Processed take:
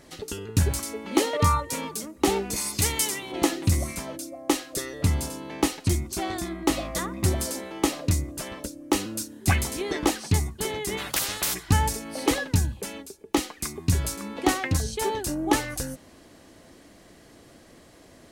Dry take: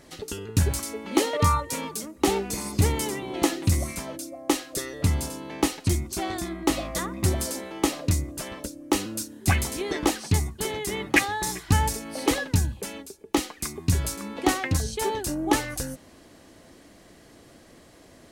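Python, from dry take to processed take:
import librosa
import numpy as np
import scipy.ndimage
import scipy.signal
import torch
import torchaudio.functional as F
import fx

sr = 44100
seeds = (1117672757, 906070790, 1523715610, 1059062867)

y = fx.tilt_shelf(x, sr, db=-7.5, hz=1300.0, at=(2.56, 3.32))
y = fx.spectral_comp(y, sr, ratio=10.0, at=(10.97, 11.53), fade=0.02)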